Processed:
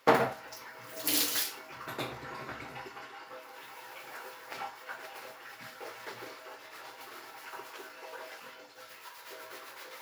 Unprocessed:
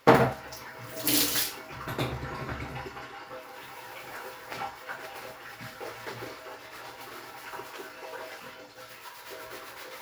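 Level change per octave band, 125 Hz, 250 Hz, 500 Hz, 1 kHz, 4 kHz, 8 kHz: −13.0, −8.0, −5.5, −4.0, −3.5, −3.5 decibels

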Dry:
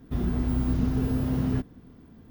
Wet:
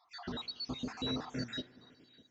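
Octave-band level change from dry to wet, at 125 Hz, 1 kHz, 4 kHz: −20.0, −5.0, +11.5 decibels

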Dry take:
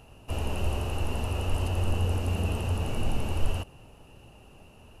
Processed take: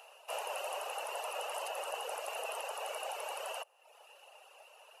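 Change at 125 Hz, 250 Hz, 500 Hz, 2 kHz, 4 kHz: below −40 dB, below −30 dB, −3.5 dB, −2.0 dB, −3.0 dB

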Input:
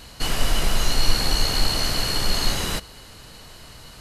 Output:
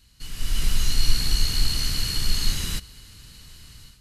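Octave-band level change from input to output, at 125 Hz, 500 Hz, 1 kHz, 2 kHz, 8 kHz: −0.5, −15.0, −13.5, −7.0, −2.0 decibels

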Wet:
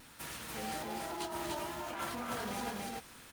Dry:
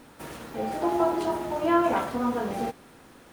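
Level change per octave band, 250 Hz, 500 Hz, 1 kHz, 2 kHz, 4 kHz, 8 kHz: −15.5, −15.5, −12.0, −6.0, 0.0, +2.5 decibels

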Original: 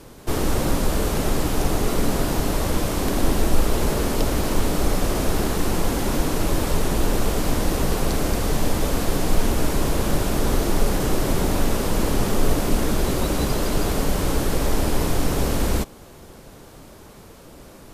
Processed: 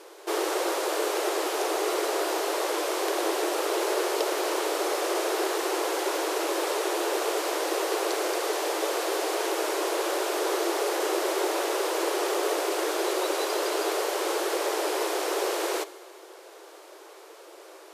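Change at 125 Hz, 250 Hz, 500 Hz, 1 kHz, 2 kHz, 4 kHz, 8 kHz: below −40 dB, −9.5 dB, 0.0 dB, 0.0 dB, 0.0 dB, −1.0 dB, −3.0 dB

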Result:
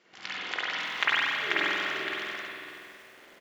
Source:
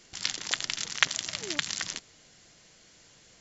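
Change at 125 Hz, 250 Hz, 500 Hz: −4.5, +4.0, +7.5 decibels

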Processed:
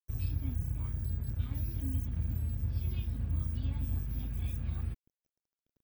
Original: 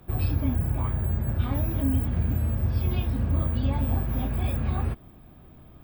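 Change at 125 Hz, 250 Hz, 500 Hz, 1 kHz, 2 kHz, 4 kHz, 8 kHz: −8.5 dB, −14.0 dB, −19.0 dB, −21.0 dB, −14.5 dB, −11.0 dB, can't be measured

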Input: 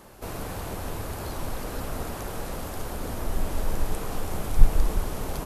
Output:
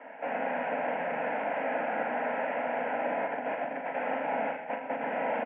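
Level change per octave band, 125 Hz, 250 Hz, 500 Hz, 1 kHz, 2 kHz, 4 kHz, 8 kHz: −22.5 dB, −2.5 dB, +5.5 dB, +6.5 dB, +8.0 dB, −10.0 dB, below −40 dB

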